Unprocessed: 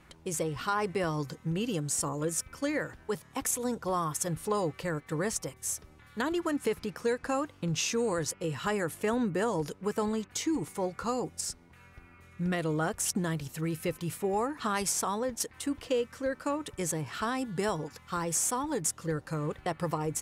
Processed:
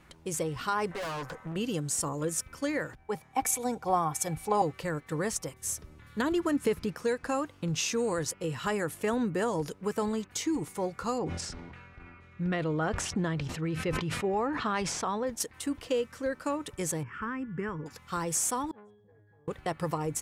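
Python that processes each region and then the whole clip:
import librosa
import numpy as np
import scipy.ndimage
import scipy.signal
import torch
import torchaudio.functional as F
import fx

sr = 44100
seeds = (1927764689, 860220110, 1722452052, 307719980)

y = fx.chain(x, sr, fx.band_shelf(hz=980.0, db=14.5, octaves=2.3),
    fx.tube_stage(drive_db=34.0, bias=0.6), at=(0.91, 1.56))
y = fx.chain(y, sr, fx.small_body(hz=(780.0, 2300.0), ring_ms=50, db=16),
    fx.band_widen(depth_pct=40), at=(2.95, 4.62))
y = fx.chain(y, sr, fx.low_shelf(hz=350.0, db=5.5),
    fx.notch(hz=790.0, q=9.9), at=(5.63, 6.93))
y = fx.chain(y, sr, fx.lowpass(hz=3700.0, slope=12),
    fx.sustainer(db_per_s=32.0), at=(11.18, 15.27))
y = fx.chain(y, sr, fx.lowpass(hz=2300.0, slope=12),
    fx.fixed_phaser(hz=1700.0, stages=4), at=(17.03, 17.86))
y = fx.chain(y, sr, fx.low_shelf(hz=240.0, db=6.0),
    fx.octave_resonator(note='G#', decay_s=0.74),
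    fx.transformer_sat(knee_hz=890.0), at=(18.71, 19.48))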